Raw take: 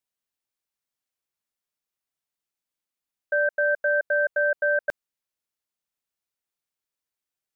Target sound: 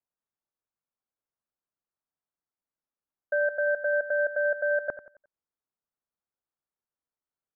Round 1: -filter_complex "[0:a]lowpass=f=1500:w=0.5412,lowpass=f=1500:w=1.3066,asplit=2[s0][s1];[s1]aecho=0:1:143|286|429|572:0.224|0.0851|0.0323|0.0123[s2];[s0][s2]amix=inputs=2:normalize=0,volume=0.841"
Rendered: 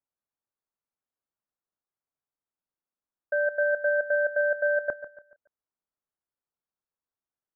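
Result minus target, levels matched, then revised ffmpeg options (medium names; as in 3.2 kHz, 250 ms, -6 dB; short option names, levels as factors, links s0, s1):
echo 54 ms late
-filter_complex "[0:a]lowpass=f=1500:w=0.5412,lowpass=f=1500:w=1.3066,asplit=2[s0][s1];[s1]aecho=0:1:89|178|267|356:0.224|0.0851|0.0323|0.0123[s2];[s0][s2]amix=inputs=2:normalize=0,volume=0.841"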